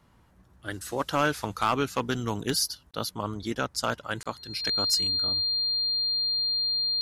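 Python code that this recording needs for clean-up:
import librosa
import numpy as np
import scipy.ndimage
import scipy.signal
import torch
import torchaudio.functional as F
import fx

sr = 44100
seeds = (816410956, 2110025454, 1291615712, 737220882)

y = fx.fix_declip(x, sr, threshold_db=-15.5)
y = fx.notch(y, sr, hz=4200.0, q=30.0)
y = fx.fix_interpolate(y, sr, at_s=(2.91, 4.23), length_ms=26.0)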